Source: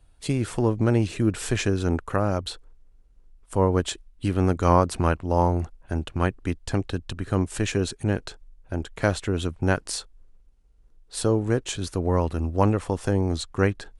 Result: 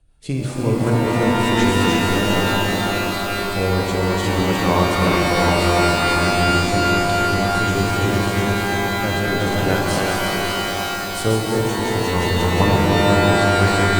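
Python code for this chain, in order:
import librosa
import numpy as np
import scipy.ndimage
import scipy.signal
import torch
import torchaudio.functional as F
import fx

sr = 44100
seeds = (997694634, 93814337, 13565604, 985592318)

y = fx.reverse_delay_fb(x, sr, ms=176, feedback_pct=77, wet_db=-2.5)
y = fx.rotary_switch(y, sr, hz=5.5, then_hz=0.75, switch_at_s=0.64)
y = fx.rev_shimmer(y, sr, seeds[0], rt60_s=3.7, semitones=12, shimmer_db=-2, drr_db=0.5)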